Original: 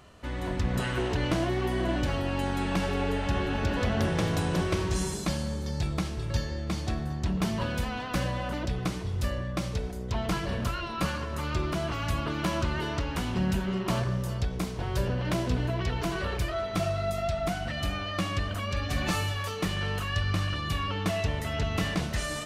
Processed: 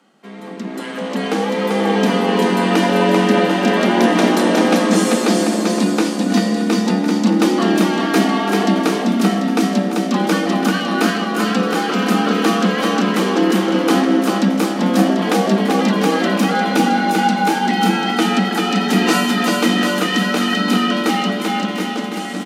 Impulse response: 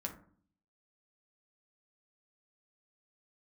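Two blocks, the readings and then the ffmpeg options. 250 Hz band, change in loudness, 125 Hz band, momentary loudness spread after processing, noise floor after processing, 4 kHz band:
+17.5 dB, +14.0 dB, +4.0 dB, 4 LU, -25 dBFS, +13.5 dB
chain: -filter_complex "[0:a]dynaudnorm=f=160:g=17:m=13dB,aecho=1:1:390|741|1057|1341|1597:0.631|0.398|0.251|0.158|0.1,asplit=2[a][b];[b]aeval=exprs='sgn(val(0))*max(abs(val(0))-0.0168,0)':c=same,volume=-8dB[c];[a][c]amix=inputs=2:normalize=0,afreqshift=140,volume=-3dB"

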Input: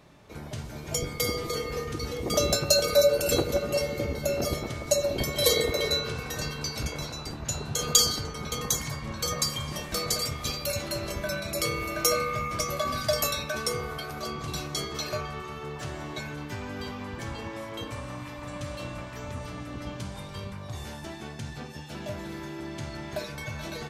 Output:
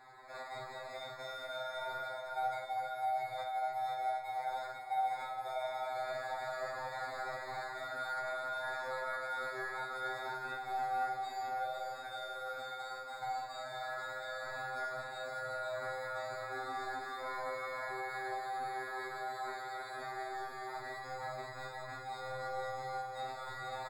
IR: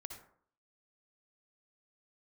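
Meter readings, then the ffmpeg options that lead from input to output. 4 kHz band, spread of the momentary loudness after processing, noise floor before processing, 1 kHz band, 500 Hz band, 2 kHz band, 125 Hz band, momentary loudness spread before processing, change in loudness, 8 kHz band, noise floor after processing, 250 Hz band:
-19.0 dB, 6 LU, -41 dBFS, +0.5 dB, -13.0 dB, -4.5 dB, -23.5 dB, 16 LU, -10.5 dB, -28.5 dB, -47 dBFS, -22.5 dB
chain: -filter_complex "[0:a]highpass=f=520:t=q:w=0.5412,highpass=f=520:t=q:w=1.307,lowpass=f=2.4k:t=q:w=0.5176,lowpass=f=2.4k:t=q:w=0.7071,lowpass=f=2.4k:t=q:w=1.932,afreqshift=190,areverse,acompressor=threshold=-43dB:ratio=12,areverse,acrusher=samples=15:mix=1:aa=0.000001,aemphasis=mode=reproduction:type=75kf,aecho=1:1:501:0.562[a];[1:a]atrim=start_sample=2205,asetrate=79380,aresample=44100[b];[a][b]afir=irnorm=-1:irlink=0,afftfilt=real='re*2.45*eq(mod(b,6),0)':imag='im*2.45*eq(mod(b,6),0)':win_size=2048:overlap=0.75,volume=17dB"

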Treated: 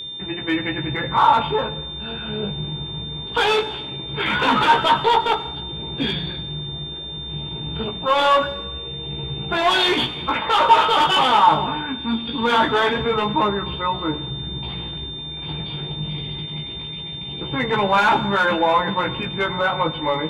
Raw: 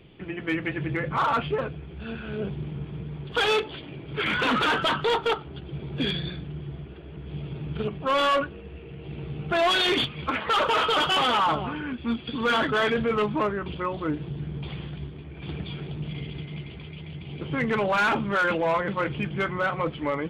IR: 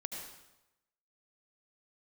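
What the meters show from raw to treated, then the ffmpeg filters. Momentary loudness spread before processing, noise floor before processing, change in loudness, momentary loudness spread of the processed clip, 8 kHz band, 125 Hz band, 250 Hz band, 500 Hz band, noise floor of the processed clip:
16 LU, -41 dBFS, +5.5 dB, 13 LU, n/a, +3.0 dB, +3.5 dB, +4.0 dB, -32 dBFS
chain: -filter_complex "[0:a]equalizer=f=900:t=o:w=0.27:g=11.5,flanger=delay=15:depth=4.3:speed=0.22,aeval=exprs='val(0)+0.0158*sin(2*PI*3600*n/s)':c=same,asplit=2[a][b];[1:a]atrim=start_sample=2205[c];[b][c]afir=irnorm=-1:irlink=0,volume=-9dB[d];[a][d]amix=inputs=2:normalize=0,volume=4.5dB"

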